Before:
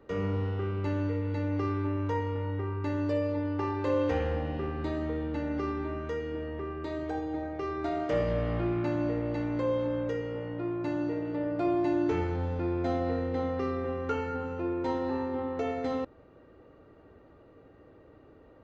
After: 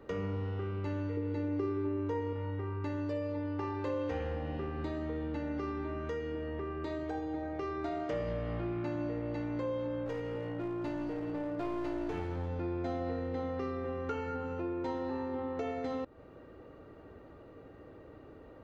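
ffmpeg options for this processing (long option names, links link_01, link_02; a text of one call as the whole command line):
ffmpeg -i in.wav -filter_complex "[0:a]asettb=1/sr,asplit=3[link_01][link_02][link_03];[link_01]atrim=end=1.174[link_04];[link_02]atrim=start=1.17:end=2.33,asetpts=PTS-STARTPTS,afade=type=in:duration=0.004:curve=qsin,afade=type=out:start_time=1.156:duration=0.004:curve=qsin,equalizer=frequency=370:width_type=o:width=0.66:gain=12[link_05];[link_03]atrim=start=2.326[link_06];[link_04][link_05]acrossfade=duration=0.004:curve1=hsin:curve2=qsin[link_07];[link_07][link_06]acrossfade=duration=0.004:curve1=qsin:curve2=hsin,asplit=3[link_08][link_09][link_10];[link_08]afade=type=out:start_time=10.05:duration=0.02[link_11];[link_09]aeval=exprs='clip(val(0),-1,0.0251)':channel_layout=same,afade=type=in:start_time=10.05:duration=0.02,afade=type=out:start_time=12.48:duration=0.02[link_12];[link_10]afade=type=in:start_time=12.48:duration=0.02[link_13];[link_11][link_12][link_13]amix=inputs=3:normalize=0,acompressor=threshold=-40dB:ratio=2.5,volume=3dB" out.wav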